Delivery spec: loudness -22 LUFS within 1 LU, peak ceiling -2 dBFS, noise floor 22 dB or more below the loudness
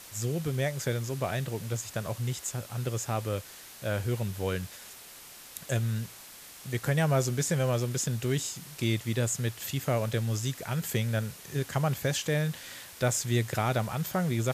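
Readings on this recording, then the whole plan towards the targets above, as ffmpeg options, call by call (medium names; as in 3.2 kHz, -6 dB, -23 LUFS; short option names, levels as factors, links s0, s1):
noise floor -49 dBFS; noise floor target -53 dBFS; loudness -30.5 LUFS; peak level -12.5 dBFS; loudness target -22.0 LUFS
-> -af "afftdn=nr=6:nf=-49"
-af "volume=2.66"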